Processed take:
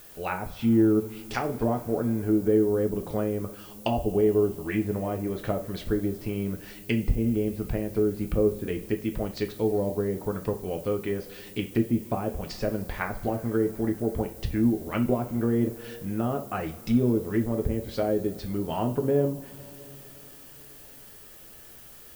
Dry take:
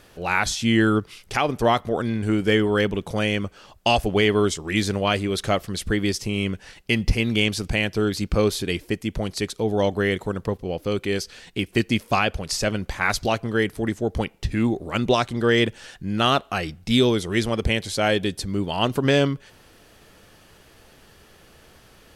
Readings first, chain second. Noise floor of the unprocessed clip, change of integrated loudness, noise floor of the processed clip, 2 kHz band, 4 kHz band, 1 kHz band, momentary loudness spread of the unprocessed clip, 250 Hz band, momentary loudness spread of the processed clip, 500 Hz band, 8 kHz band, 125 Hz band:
−53 dBFS, −4.5 dB, −48 dBFS, −14.5 dB, −18.5 dB, −9.0 dB, 8 LU, −2.0 dB, 20 LU, −3.0 dB, −13.0 dB, −4.0 dB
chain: treble cut that deepens with the level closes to 550 Hz, closed at −18 dBFS
background noise violet −46 dBFS
coupled-rooms reverb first 0.31 s, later 4.1 s, from −22 dB, DRR 4 dB
level −4.5 dB

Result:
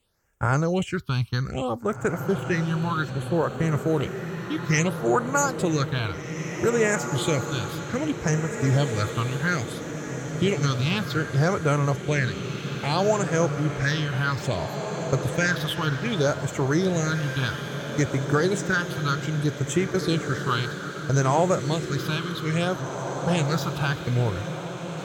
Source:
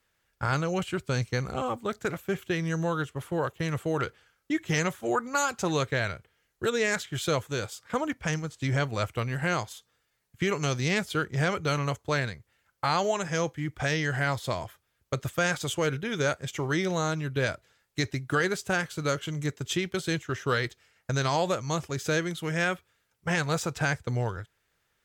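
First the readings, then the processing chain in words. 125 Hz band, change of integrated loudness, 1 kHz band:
+6.5 dB, +4.0 dB, +3.0 dB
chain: all-pass phaser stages 6, 0.62 Hz, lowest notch 490–4,300 Hz
feedback delay with all-pass diffusion 1,892 ms, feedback 52%, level −7 dB
level +5 dB

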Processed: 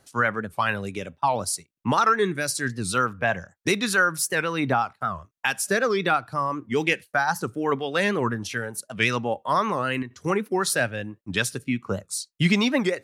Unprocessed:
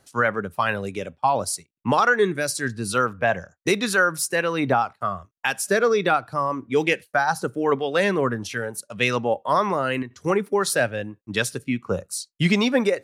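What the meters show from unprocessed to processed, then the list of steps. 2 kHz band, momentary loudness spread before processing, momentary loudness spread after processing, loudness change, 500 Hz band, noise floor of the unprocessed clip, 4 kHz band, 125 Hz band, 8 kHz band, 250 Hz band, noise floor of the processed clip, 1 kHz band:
−1.0 dB, 9 LU, 8 LU, −1.5 dB, −4.5 dB, −70 dBFS, 0.0 dB, −0.5 dB, 0.0 dB, −1.0 dB, −71 dBFS, −1.5 dB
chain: dynamic equaliser 530 Hz, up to −5 dB, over −34 dBFS, Q 1.1
wow of a warped record 78 rpm, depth 160 cents

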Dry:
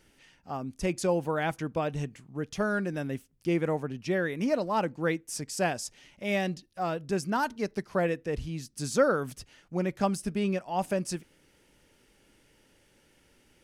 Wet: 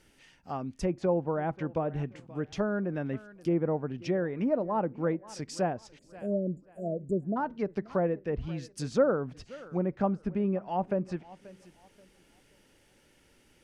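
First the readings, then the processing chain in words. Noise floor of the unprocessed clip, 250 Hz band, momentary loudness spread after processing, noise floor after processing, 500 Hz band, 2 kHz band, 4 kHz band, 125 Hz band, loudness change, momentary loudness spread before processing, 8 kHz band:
−65 dBFS, 0.0 dB, 10 LU, −64 dBFS, −0.5 dB, −9.0 dB, −8.0 dB, 0.0 dB, −1.0 dB, 9 LU, −11.0 dB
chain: time-frequency box erased 0:05.99–0:07.37, 700–6,800 Hz
tape delay 531 ms, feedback 33%, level −20 dB, low-pass 2,100 Hz
treble cut that deepens with the level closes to 980 Hz, closed at −25.5 dBFS

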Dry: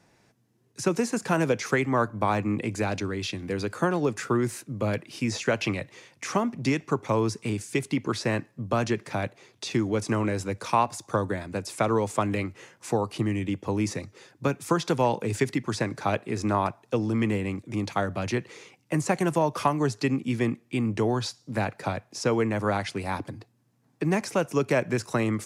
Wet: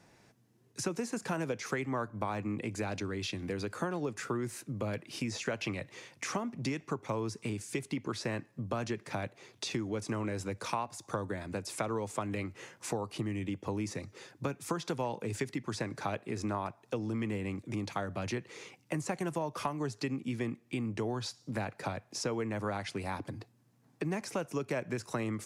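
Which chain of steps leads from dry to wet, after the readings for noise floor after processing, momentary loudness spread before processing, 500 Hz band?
−67 dBFS, 7 LU, −9.5 dB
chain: downward compressor 2.5 to 1, threshold −36 dBFS, peak gain reduction 13.5 dB

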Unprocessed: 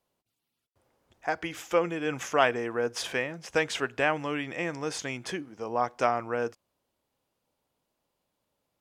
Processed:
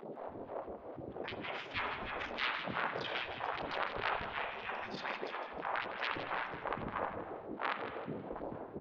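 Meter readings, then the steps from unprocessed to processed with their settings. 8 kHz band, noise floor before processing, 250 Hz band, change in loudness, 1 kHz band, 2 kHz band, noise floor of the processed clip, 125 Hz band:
below −25 dB, −83 dBFS, −10.5 dB, −9.5 dB, −6.0 dB, −6.0 dB, −49 dBFS, −8.5 dB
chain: wind on the microphone 350 Hz −33 dBFS
spectral tilt −4 dB per octave
in parallel at −1.5 dB: downward compressor, threshold −34 dBFS, peak gain reduction 26.5 dB
on the sum: low-shelf EQ 420 Hz +11 dB
soft clipping −17 dBFS, distortion −1 dB
Butterworth low-pass 4,500 Hz 36 dB per octave
gate on every frequency bin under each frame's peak −25 dB weak
spring reverb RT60 1.2 s, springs 46/55 ms, chirp 35 ms, DRR 4 dB
all-pass phaser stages 2, 3.1 Hz, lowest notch 110–1,900 Hz
hum removal 86.26 Hz, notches 30
on a send: echo with shifted repeats 158 ms, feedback 32%, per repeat +42 Hz, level −10 dB
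on the sum: level +1.5 dB

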